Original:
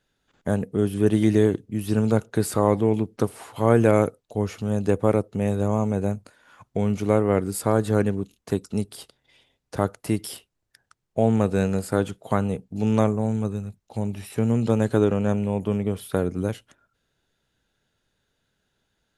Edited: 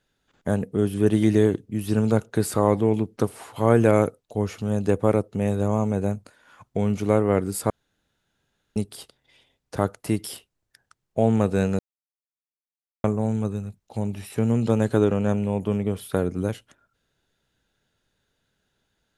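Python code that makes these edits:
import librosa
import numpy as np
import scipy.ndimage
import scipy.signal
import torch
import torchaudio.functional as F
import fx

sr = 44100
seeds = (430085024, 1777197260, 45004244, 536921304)

y = fx.edit(x, sr, fx.room_tone_fill(start_s=7.7, length_s=1.06),
    fx.silence(start_s=11.79, length_s=1.25), tone=tone)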